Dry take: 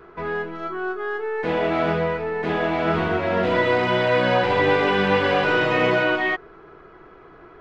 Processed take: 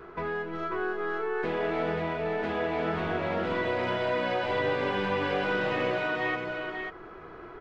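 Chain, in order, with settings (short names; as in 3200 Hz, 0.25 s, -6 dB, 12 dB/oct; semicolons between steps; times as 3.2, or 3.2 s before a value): compressor 3:1, threshold -31 dBFS, peak gain reduction 12.5 dB; on a send: tapped delay 0.361/0.541 s -11.5/-5 dB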